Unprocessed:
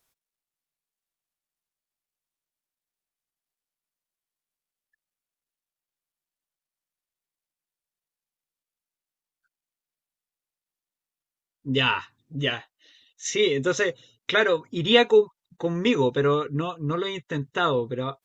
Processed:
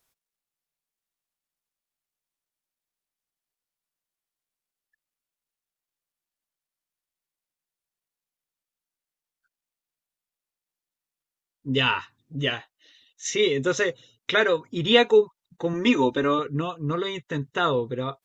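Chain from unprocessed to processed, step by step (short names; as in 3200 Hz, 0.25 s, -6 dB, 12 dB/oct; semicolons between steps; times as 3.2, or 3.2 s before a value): 15.73–16.39 comb 3.3 ms, depth 68%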